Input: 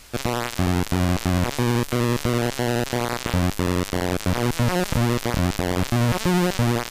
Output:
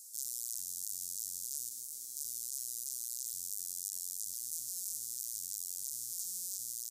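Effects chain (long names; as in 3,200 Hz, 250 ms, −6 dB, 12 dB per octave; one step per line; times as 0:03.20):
inverse Chebyshev high-pass filter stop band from 2,700 Hz, stop band 50 dB
speech leveller 0.5 s
echo with shifted repeats 126 ms, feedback 63%, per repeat +33 Hz, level −14 dB
0:01.69–0:02.17: micro pitch shift up and down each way 42 cents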